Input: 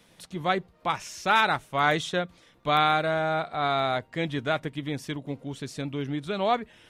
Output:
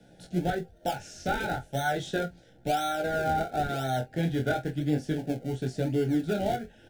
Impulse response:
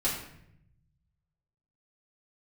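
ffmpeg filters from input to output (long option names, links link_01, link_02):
-filter_complex "[0:a]lowpass=9100,highshelf=frequency=1600:width_type=q:width=3:gain=-8.5,acrossover=split=150|980[link_01][link_02][link_03];[link_02]alimiter=limit=-23.5dB:level=0:latency=1:release=495[link_04];[link_01][link_04][link_03]amix=inputs=3:normalize=0,acompressor=threshold=-25dB:ratio=6,flanger=delay=16:depth=7.4:speed=0.35,asplit=2[link_05][link_06];[link_06]acrusher=samples=35:mix=1:aa=0.000001:lfo=1:lforange=35:lforate=0.96,volume=-11dB[link_07];[link_05][link_07]amix=inputs=2:normalize=0,asuperstop=centerf=1100:order=12:qfactor=1.9,aecho=1:1:23|47:0.299|0.141,volume=6.5dB"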